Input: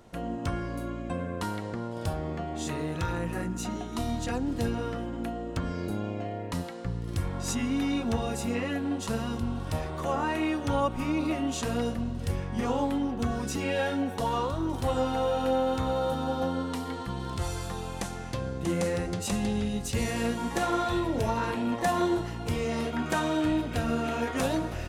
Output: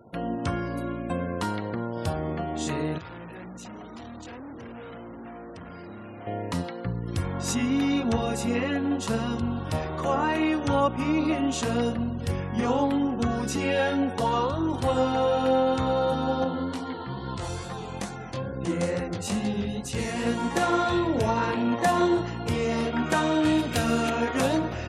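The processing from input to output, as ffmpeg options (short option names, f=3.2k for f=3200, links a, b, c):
-filter_complex "[0:a]asettb=1/sr,asplit=3[a][b][c];[a]atrim=end=2.984[d];[b]atrim=start=2.98:end=6.27,asetpts=PTS-STARTPTS,afade=t=in:d=0.004:c=qsin,afade=t=out:st=3.286:d=0.004:c=qsin,aeval=exprs='(tanh(141*val(0)+0.25)-tanh(0.25))/141':c=same[e];[c]atrim=start=6.266[f];[d][e]acrossfade=d=0.004:c1=hsin:c2=qsin[g];[g][f]acrossfade=d=0.004:c1=qsin:c2=hsin,asettb=1/sr,asplit=3[h][i][j];[h]atrim=end=16.444[k];[i]atrim=start=16.44:end=20.27,asetpts=PTS-STARTPTS,afade=t=in:d=0.004:c=qsin,afade=t=out:st=3.826:d=0.004:c=qsin,flanger=delay=15:depth=7.8:speed=2.3[l];[j]atrim=start=20.266[m];[k][l]acrossfade=d=0.004:c1=hsin:c2=qsin[n];[n][m]acrossfade=d=0.004:c1=qsin:c2=hsin,asettb=1/sr,asplit=3[o][p][q];[o]atrim=end=23.454[r];[p]atrim=start=23.45:end=24.1,asetpts=PTS-STARTPTS,afade=t=in:d=0.004:c=qsin,afade=t=out:st=0.646:d=0.004:c=qsin,highshelf=f=3.4k:g=10[s];[q]atrim=start=24.096[t];[r][s]acrossfade=d=0.004:c1=hsin:c2=qsin[u];[u][t]acrossfade=d=0.004:c1=qsin:c2=hsin,highpass=85,highshelf=f=9.4k:g=-3.5,afftfilt=real='re*gte(hypot(re,im),0.00282)':imag='im*gte(hypot(re,im),0.00282)':win_size=1024:overlap=0.75,volume=4dB"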